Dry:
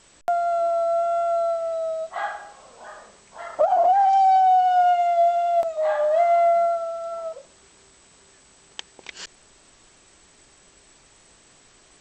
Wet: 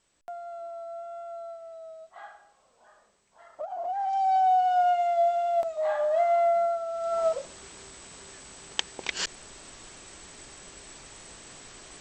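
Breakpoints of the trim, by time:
3.72 s -17 dB
4.43 s -5 dB
6.85 s -5 dB
7.26 s +7 dB

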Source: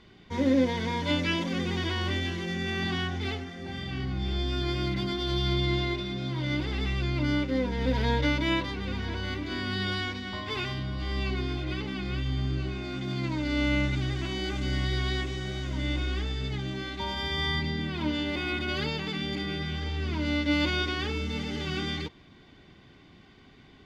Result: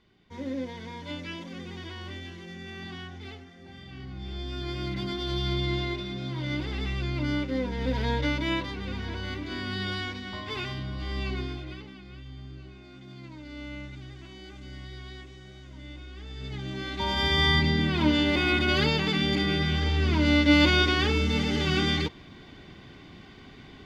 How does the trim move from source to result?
3.85 s -10 dB
5.10 s -1.5 dB
11.40 s -1.5 dB
12.02 s -13.5 dB
16.13 s -13.5 dB
16.45 s -5 dB
17.23 s +6.5 dB

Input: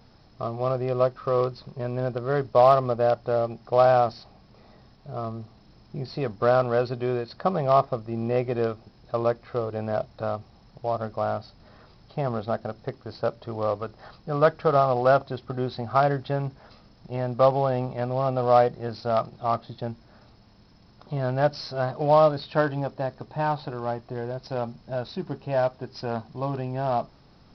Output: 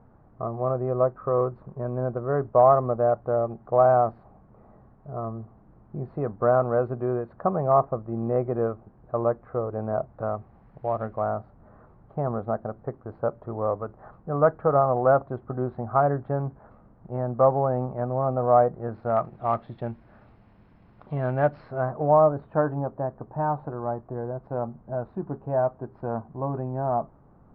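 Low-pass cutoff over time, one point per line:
low-pass 24 dB/octave
10.09 s 1.4 kHz
11.00 s 2.3 kHz
11.36 s 1.4 kHz
18.77 s 1.4 kHz
19.53 s 2.5 kHz
21.29 s 2.5 kHz
22.10 s 1.3 kHz

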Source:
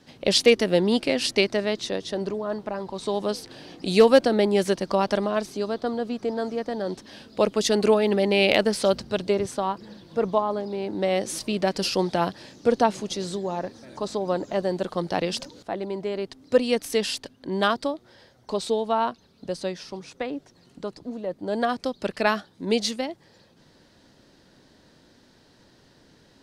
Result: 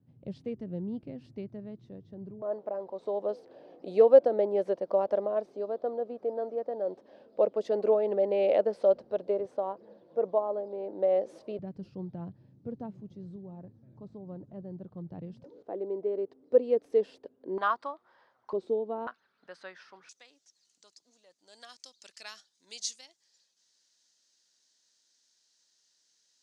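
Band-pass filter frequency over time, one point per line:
band-pass filter, Q 3.1
120 Hz
from 2.42 s 550 Hz
from 11.59 s 120 Hz
from 15.44 s 440 Hz
from 17.58 s 1.1 kHz
from 18.53 s 360 Hz
from 19.07 s 1.5 kHz
from 20.09 s 6.6 kHz

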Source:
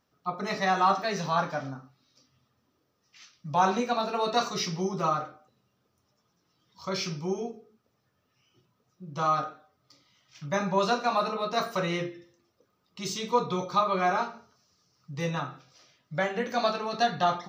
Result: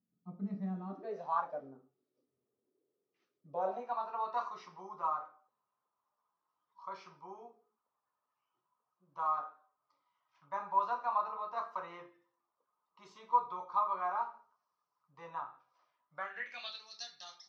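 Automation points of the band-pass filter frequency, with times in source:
band-pass filter, Q 5.7
0.85 s 200 Hz
1.38 s 1.1 kHz
1.62 s 400 Hz
3.48 s 400 Hz
3.96 s 1 kHz
16.14 s 1 kHz
16.90 s 5.2 kHz

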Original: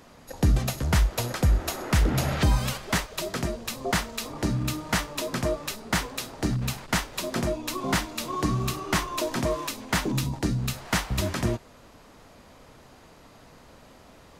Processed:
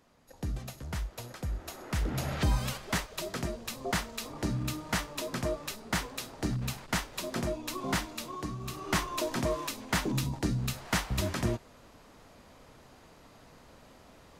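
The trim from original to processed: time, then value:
1.47 s -14 dB
2.50 s -5.5 dB
8.12 s -5.5 dB
8.58 s -13.5 dB
8.89 s -4 dB

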